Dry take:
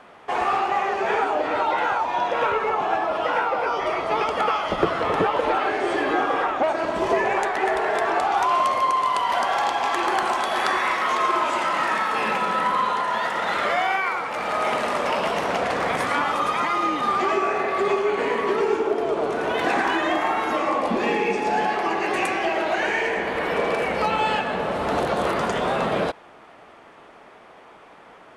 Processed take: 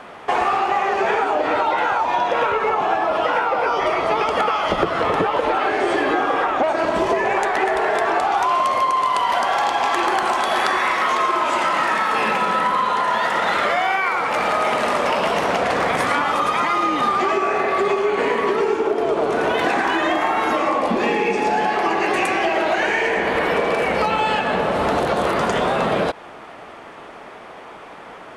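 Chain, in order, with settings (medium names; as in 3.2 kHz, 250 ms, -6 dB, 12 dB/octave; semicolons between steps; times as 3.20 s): compression, threshold -25 dBFS, peak gain reduction 10 dB; trim +9 dB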